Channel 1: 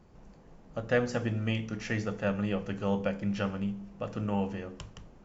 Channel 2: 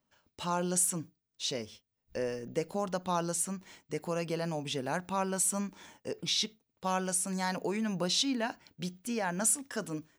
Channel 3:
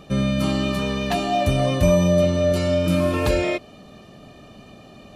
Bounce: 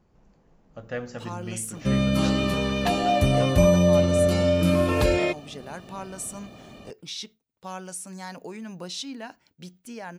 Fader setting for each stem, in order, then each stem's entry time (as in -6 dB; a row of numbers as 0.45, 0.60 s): -5.5, -5.0, -1.0 dB; 0.00, 0.80, 1.75 s